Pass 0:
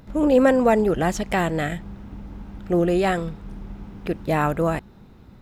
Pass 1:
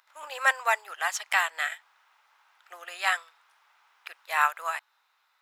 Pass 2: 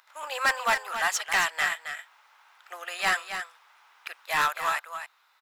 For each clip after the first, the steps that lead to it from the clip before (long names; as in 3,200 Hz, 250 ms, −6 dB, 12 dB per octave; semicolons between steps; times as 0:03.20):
inverse Chebyshev high-pass filter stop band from 230 Hz, stop band 70 dB; expander for the loud parts 1.5 to 1, over −47 dBFS; level +5.5 dB
soft clipping −23 dBFS, distortion −8 dB; single-tap delay 270 ms −9 dB; level +5 dB